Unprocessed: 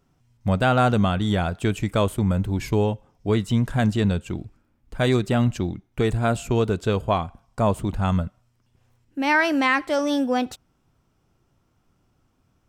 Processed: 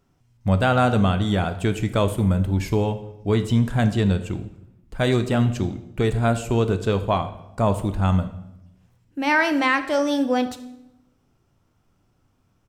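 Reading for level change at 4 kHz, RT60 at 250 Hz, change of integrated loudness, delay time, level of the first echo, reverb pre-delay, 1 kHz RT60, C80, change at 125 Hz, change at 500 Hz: +0.5 dB, 1.3 s, +1.0 dB, 76 ms, −20.0 dB, 9 ms, 0.85 s, 16.0 dB, +1.5 dB, +0.5 dB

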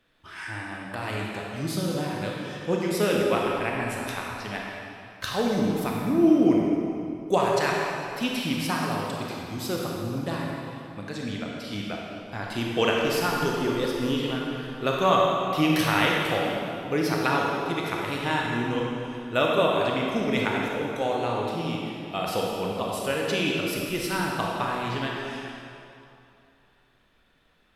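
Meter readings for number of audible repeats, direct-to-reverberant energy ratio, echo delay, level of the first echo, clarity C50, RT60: no echo audible, −2.5 dB, no echo audible, no echo audible, −1.5 dB, 2.7 s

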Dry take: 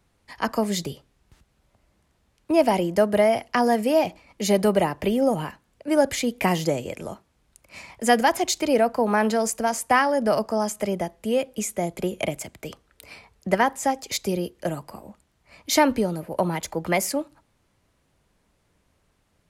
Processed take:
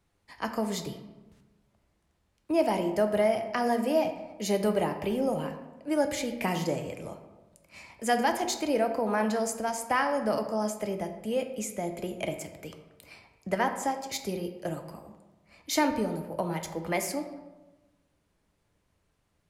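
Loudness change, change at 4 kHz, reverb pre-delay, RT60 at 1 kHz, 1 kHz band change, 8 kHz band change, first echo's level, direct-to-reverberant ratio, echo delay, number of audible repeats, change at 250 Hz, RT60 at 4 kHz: −6.5 dB, −7.0 dB, 4 ms, 1.1 s, −6.5 dB, −7.0 dB, no echo audible, 6.0 dB, no echo audible, no echo audible, −6.0 dB, 0.65 s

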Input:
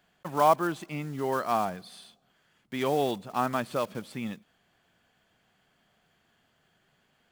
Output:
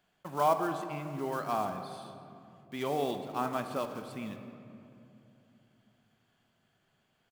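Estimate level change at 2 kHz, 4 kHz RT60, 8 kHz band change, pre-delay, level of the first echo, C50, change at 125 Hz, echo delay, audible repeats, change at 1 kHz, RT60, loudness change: −5.5 dB, 1.5 s, −5.0 dB, 3 ms, −18.0 dB, 8.0 dB, −4.5 dB, 169 ms, 1, −4.5 dB, 2.8 s, −5.0 dB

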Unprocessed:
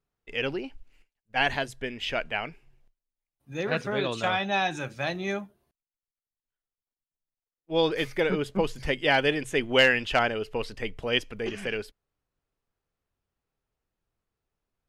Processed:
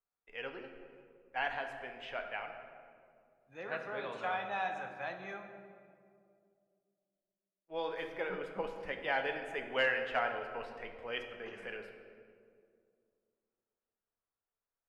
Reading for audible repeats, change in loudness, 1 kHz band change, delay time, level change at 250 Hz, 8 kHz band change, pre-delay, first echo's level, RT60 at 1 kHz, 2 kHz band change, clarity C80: no echo audible, −11.0 dB, −7.5 dB, no echo audible, −17.5 dB, below −20 dB, 4 ms, no echo audible, 2.0 s, −9.5 dB, 8.0 dB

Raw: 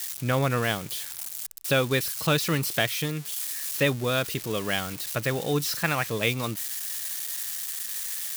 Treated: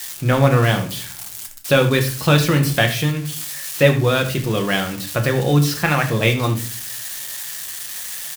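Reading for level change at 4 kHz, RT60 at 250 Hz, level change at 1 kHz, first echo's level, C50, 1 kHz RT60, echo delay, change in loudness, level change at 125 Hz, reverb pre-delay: +6.0 dB, 0.65 s, +8.0 dB, −14.0 dB, 10.5 dB, 0.35 s, 76 ms, +8.0 dB, +12.5 dB, 6 ms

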